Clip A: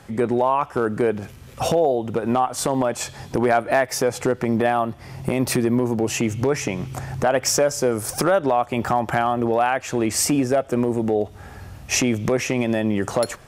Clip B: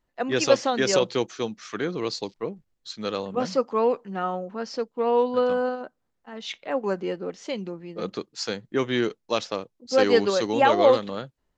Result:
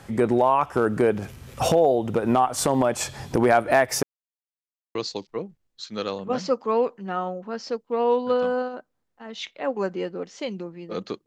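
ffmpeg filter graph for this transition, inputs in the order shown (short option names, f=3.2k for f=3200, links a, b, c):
-filter_complex "[0:a]apad=whole_dur=11.26,atrim=end=11.26,asplit=2[a][b];[a]atrim=end=4.03,asetpts=PTS-STARTPTS,afade=t=out:st=4.026:d=0.004:c=hsin[c];[b]atrim=start=4.03:end=4.95,asetpts=PTS-STARTPTS,volume=0[d];[1:a]atrim=start=2.02:end=8.33,asetpts=PTS-STARTPTS,afade=t=in:d=0.004:c=hsin[e];[c][d][e]concat=n=3:v=0:a=1"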